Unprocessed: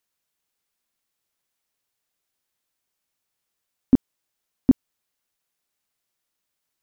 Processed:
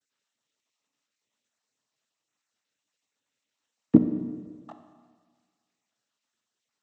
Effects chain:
time-frequency cells dropped at random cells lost 34%
0:03.95–0:04.70: comb filter 6.4 ms, depth 65%
pitch vibrato 0.5 Hz 27 cents
cochlear-implant simulation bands 12
four-comb reverb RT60 1.6 s, combs from 29 ms, DRR 7 dB

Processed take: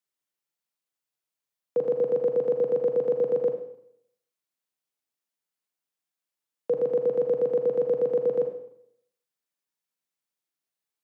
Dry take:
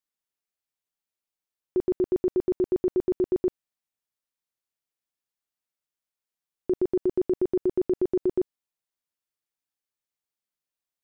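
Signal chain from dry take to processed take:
four-comb reverb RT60 0.72 s, combs from 33 ms, DRR 5 dB
frequency shifter +120 Hz

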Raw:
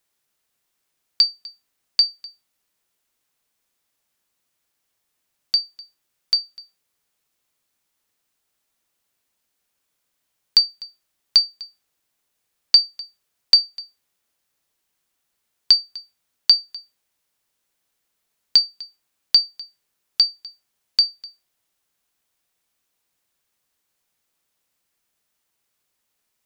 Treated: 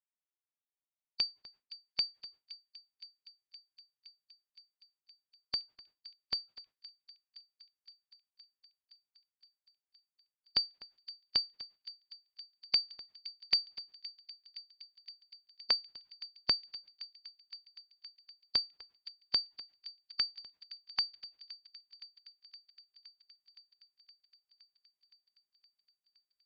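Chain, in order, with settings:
spectral magnitudes quantised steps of 30 dB
noise gate with hold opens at −41 dBFS
high-frequency loss of the air 260 metres
delay with a high-pass on its return 517 ms, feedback 75%, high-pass 2,300 Hz, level −16.5 dB
level −5 dB

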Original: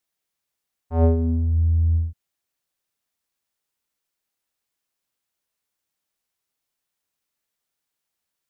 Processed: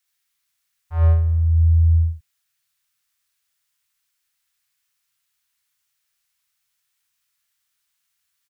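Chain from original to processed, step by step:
drawn EQ curve 150 Hz 0 dB, 240 Hz −28 dB, 1,300 Hz +4 dB, 1,800 Hz +6 dB
on a send: ambience of single reflections 59 ms −3.5 dB, 75 ms −6 dB

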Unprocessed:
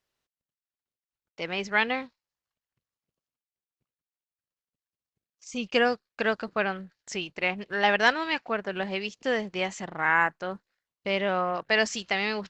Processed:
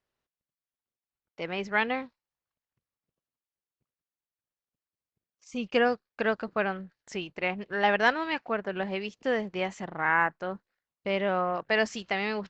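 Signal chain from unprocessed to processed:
high-shelf EQ 3,100 Hz −10.5 dB

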